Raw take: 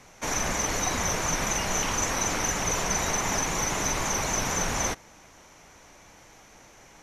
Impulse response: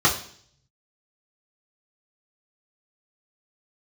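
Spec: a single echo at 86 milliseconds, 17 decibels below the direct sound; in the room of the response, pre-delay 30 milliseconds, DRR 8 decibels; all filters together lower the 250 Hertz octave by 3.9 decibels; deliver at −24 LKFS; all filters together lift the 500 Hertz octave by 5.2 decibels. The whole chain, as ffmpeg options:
-filter_complex "[0:a]equalizer=frequency=250:width_type=o:gain=-8.5,equalizer=frequency=500:width_type=o:gain=8.5,aecho=1:1:86:0.141,asplit=2[link_01][link_02];[1:a]atrim=start_sample=2205,adelay=30[link_03];[link_02][link_03]afir=irnorm=-1:irlink=0,volume=-26dB[link_04];[link_01][link_04]amix=inputs=2:normalize=0,volume=1dB"

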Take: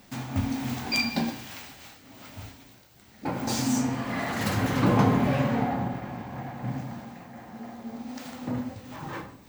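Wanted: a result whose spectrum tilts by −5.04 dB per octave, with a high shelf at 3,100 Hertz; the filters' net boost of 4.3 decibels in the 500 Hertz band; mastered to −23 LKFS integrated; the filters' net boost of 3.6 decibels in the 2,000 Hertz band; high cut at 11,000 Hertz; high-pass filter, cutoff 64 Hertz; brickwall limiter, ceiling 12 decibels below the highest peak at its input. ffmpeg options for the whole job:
ffmpeg -i in.wav -af "highpass=64,lowpass=11000,equalizer=frequency=500:width_type=o:gain=5,equalizer=frequency=2000:width_type=o:gain=6,highshelf=frequency=3100:gain=-5,volume=8dB,alimiter=limit=-11.5dB:level=0:latency=1" out.wav

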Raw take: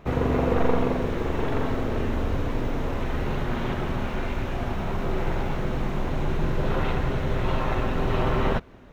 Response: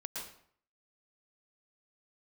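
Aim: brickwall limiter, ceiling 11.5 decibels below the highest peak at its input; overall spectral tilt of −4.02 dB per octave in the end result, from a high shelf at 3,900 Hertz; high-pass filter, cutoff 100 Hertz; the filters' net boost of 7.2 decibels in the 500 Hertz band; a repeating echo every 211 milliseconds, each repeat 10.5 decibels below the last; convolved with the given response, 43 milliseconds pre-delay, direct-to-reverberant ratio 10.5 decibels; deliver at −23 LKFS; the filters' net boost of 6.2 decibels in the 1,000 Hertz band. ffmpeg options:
-filter_complex "[0:a]highpass=100,equalizer=frequency=500:width_type=o:gain=7.5,equalizer=frequency=1000:width_type=o:gain=5.5,highshelf=frequency=3900:gain=-4,alimiter=limit=-15.5dB:level=0:latency=1,aecho=1:1:211|422|633:0.299|0.0896|0.0269,asplit=2[link_01][link_02];[1:a]atrim=start_sample=2205,adelay=43[link_03];[link_02][link_03]afir=irnorm=-1:irlink=0,volume=-10.5dB[link_04];[link_01][link_04]amix=inputs=2:normalize=0,volume=2dB"

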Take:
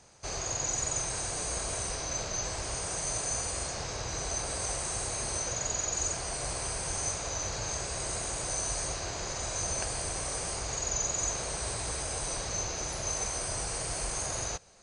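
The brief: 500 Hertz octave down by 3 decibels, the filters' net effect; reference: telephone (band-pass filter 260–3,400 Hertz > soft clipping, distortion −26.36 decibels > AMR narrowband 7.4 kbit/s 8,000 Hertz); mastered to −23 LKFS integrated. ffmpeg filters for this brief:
ffmpeg -i in.wav -af "highpass=260,lowpass=3400,equalizer=frequency=500:width_type=o:gain=-3.5,asoftclip=threshold=-29dB,volume=22.5dB" -ar 8000 -c:a libopencore_amrnb -b:a 7400 out.amr

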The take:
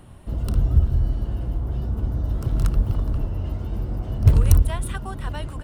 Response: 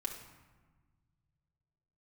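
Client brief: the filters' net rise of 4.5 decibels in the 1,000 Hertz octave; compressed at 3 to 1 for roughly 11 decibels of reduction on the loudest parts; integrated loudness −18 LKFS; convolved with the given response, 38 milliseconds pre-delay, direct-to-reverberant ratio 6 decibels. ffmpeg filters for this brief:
-filter_complex "[0:a]equalizer=frequency=1000:width_type=o:gain=5.5,acompressor=threshold=-23dB:ratio=3,asplit=2[link_01][link_02];[1:a]atrim=start_sample=2205,adelay=38[link_03];[link_02][link_03]afir=irnorm=-1:irlink=0,volume=-6dB[link_04];[link_01][link_04]amix=inputs=2:normalize=0,volume=9.5dB"

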